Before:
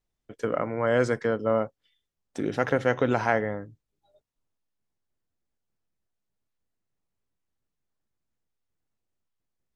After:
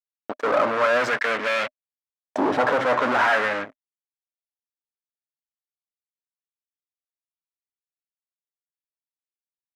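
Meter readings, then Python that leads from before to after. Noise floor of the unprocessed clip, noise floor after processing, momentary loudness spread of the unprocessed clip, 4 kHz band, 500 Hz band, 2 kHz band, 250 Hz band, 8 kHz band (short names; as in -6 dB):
-83 dBFS, under -85 dBFS, 10 LU, +12.0 dB, +2.0 dB, +9.0 dB, 0.0 dB, n/a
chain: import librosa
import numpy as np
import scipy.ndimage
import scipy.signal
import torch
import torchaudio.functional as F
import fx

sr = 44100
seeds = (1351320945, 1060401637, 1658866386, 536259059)

y = fx.fuzz(x, sr, gain_db=40.0, gate_db=-46.0)
y = fx.filter_lfo_bandpass(y, sr, shape='saw_up', hz=0.43, low_hz=780.0, high_hz=3500.0, q=1.6)
y = fx.small_body(y, sr, hz=(260.0, 610.0), ring_ms=45, db=8)
y = F.gain(torch.from_numpy(y), 1.0).numpy()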